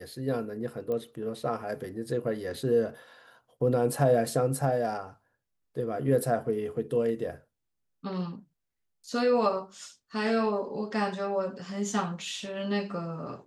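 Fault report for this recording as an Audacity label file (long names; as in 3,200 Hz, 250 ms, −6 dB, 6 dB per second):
0.920000	0.920000	click −23 dBFS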